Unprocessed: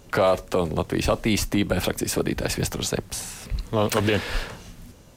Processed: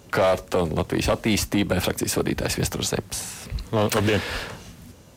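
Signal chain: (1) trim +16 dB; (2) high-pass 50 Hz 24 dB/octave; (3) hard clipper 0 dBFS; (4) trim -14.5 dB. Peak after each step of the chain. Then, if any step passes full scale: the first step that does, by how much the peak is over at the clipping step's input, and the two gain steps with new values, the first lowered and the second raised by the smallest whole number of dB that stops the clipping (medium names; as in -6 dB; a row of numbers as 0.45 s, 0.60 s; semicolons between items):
+6.5 dBFS, +6.5 dBFS, 0.0 dBFS, -14.5 dBFS; step 1, 6.5 dB; step 1 +9 dB, step 4 -7.5 dB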